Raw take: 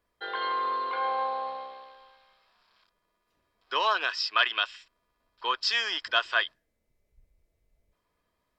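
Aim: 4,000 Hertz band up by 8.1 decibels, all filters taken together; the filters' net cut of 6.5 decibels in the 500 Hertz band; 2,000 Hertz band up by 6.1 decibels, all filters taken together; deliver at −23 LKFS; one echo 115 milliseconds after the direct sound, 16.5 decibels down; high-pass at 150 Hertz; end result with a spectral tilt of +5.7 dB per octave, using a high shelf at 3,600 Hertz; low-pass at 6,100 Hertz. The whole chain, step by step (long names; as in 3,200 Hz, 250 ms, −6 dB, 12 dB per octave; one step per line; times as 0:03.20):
high-pass filter 150 Hz
low-pass filter 6,100 Hz
parametric band 500 Hz −9 dB
parametric band 2,000 Hz +6 dB
high-shelf EQ 3,600 Hz +7.5 dB
parametric band 4,000 Hz +4.5 dB
single-tap delay 115 ms −16.5 dB
level −1 dB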